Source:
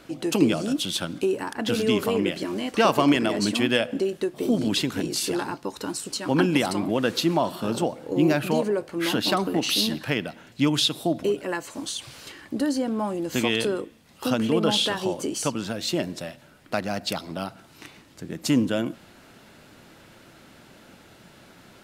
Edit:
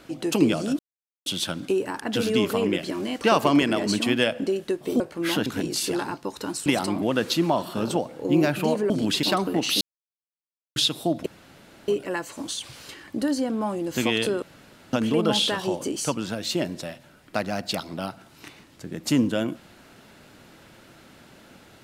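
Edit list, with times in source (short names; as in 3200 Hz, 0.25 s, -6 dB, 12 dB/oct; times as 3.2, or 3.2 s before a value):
0.79 insert silence 0.47 s
4.53–4.86 swap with 8.77–9.23
6.06–6.53 cut
9.81–10.76 mute
11.26 insert room tone 0.62 s
13.8–14.31 room tone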